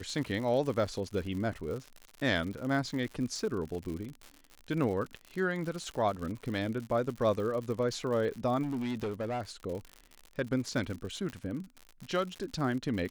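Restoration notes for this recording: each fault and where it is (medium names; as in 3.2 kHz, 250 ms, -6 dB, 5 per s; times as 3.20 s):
crackle 100 per s -37 dBFS
8.62–9.42 s: clipped -30.5 dBFS
11.30 s: pop -26 dBFS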